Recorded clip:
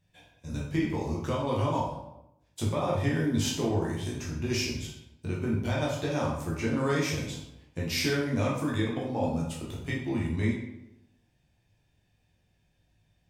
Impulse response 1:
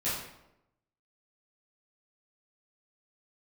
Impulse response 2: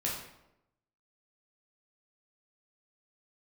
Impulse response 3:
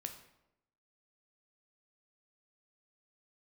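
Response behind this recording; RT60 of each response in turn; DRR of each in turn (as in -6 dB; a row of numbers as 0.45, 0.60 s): 2; 0.85, 0.85, 0.85 s; -12.5, -4.5, 5.0 dB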